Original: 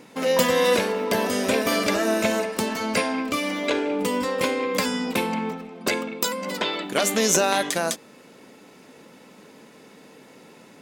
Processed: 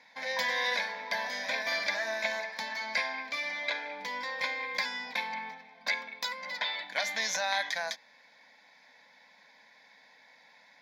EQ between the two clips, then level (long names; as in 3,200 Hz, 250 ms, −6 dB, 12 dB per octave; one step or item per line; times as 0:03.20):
resonant band-pass 2,300 Hz, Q 0.55
parametric band 2,200 Hz +6.5 dB 2.8 octaves
phaser with its sweep stopped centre 1,900 Hz, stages 8
−6.5 dB